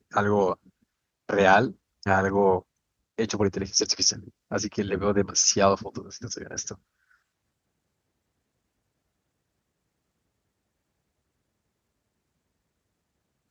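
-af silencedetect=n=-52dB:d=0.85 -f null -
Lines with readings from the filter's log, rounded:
silence_start: 7.14
silence_end: 13.50 | silence_duration: 6.36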